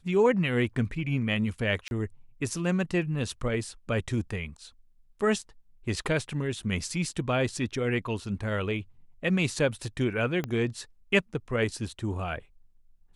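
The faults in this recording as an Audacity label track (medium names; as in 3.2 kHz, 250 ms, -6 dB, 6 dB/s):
1.880000	1.910000	dropout 31 ms
10.440000	10.440000	pop -18 dBFS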